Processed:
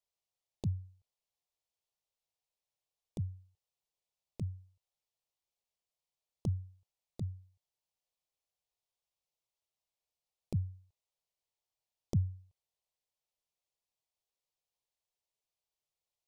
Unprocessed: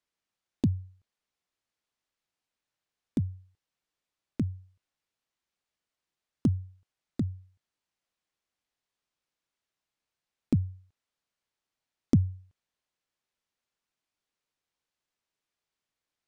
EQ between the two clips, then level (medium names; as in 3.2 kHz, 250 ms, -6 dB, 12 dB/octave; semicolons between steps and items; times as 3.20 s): static phaser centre 640 Hz, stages 4; -3.5 dB